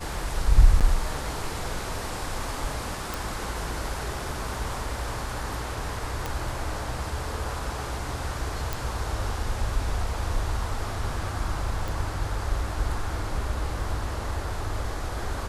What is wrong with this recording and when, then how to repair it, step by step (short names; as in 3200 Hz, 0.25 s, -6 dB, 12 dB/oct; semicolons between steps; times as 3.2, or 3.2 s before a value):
0.8–0.81 gap 7 ms
3.14 pop
6.26 pop
8.73 pop
11.88 pop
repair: de-click; interpolate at 0.8, 7 ms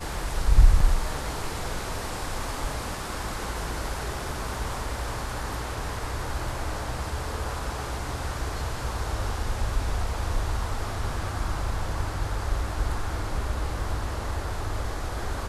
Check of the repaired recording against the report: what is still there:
none